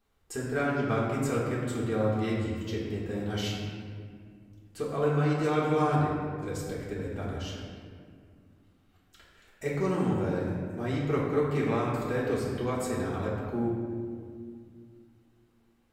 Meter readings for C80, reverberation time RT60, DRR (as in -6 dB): 1.5 dB, 2.1 s, -7.5 dB